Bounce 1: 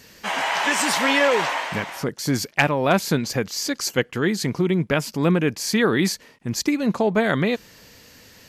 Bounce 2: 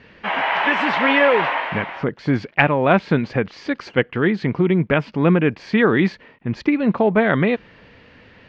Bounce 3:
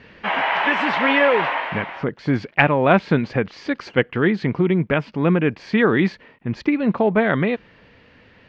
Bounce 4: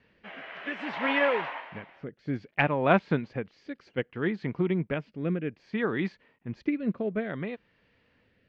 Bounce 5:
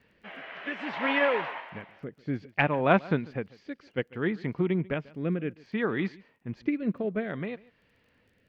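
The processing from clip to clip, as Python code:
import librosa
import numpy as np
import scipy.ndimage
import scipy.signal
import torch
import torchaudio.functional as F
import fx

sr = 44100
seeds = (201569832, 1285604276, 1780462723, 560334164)

y1 = scipy.signal.sosfilt(scipy.signal.butter(4, 2900.0, 'lowpass', fs=sr, output='sos'), x)
y1 = y1 * librosa.db_to_amplitude(3.5)
y2 = fx.rider(y1, sr, range_db=10, speed_s=2.0)
y2 = y2 * librosa.db_to_amplitude(-2.0)
y3 = fx.rotary(y2, sr, hz=0.6)
y3 = fx.upward_expand(y3, sr, threshold_db=-29.0, expansion=1.5)
y3 = y3 * librosa.db_to_amplitude(-6.0)
y4 = fx.dmg_crackle(y3, sr, seeds[0], per_s=18.0, level_db=-56.0)
y4 = y4 + 10.0 ** (-22.0 / 20.0) * np.pad(y4, (int(143 * sr / 1000.0), 0))[:len(y4)]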